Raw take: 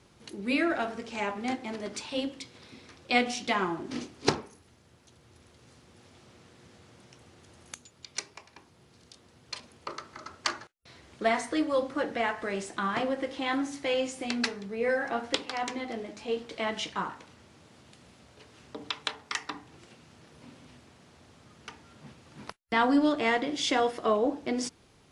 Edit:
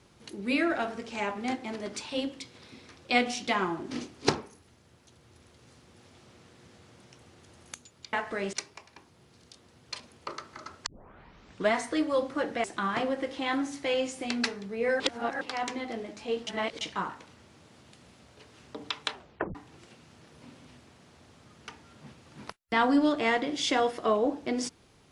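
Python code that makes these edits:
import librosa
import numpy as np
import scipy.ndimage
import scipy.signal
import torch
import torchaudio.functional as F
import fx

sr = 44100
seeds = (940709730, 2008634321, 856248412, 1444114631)

y = fx.edit(x, sr, fx.tape_start(start_s=10.46, length_s=0.87),
    fx.move(start_s=12.24, length_s=0.4, to_s=8.13),
    fx.reverse_span(start_s=15.0, length_s=0.41),
    fx.reverse_span(start_s=16.47, length_s=0.34),
    fx.tape_stop(start_s=19.12, length_s=0.43), tone=tone)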